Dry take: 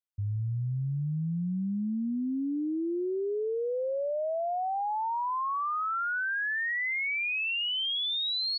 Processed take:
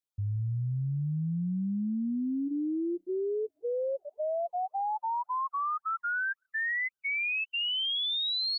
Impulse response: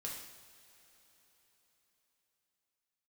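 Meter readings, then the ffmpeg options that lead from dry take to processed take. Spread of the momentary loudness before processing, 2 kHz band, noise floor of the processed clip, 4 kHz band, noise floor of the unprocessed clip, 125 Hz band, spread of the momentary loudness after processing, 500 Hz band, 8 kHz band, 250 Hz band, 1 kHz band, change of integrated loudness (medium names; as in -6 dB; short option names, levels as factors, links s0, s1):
4 LU, -2.0 dB, under -85 dBFS, 0.0 dB, -31 dBFS, 0.0 dB, 6 LU, -2.0 dB, no reading, 0.0 dB, -1.5 dB, -1.0 dB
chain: -af "afftfilt=real='re*(1-between(b*sr/1024,420*pow(2200/420,0.5+0.5*sin(2*PI*1.9*pts/sr))/1.41,420*pow(2200/420,0.5+0.5*sin(2*PI*1.9*pts/sr))*1.41))':imag='im*(1-between(b*sr/1024,420*pow(2200/420,0.5+0.5*sin(2*PI*1.9*pts/sr))/1.41,420*pow(2200/420,0.5+0.5*sin(2*PI*1.9*pts/sr))*1.41))':win_size=1024:overlap=0.75"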